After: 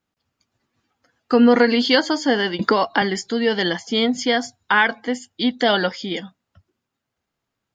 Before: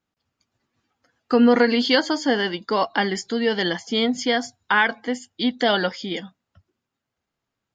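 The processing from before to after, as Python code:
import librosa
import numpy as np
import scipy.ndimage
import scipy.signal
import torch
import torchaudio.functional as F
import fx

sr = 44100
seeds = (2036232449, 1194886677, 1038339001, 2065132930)

y = fx.band_squash(x, sr, depth_pct=100, at=(2.59, 3.02))
y = y * 10.0 ** (2.0 / 20.0)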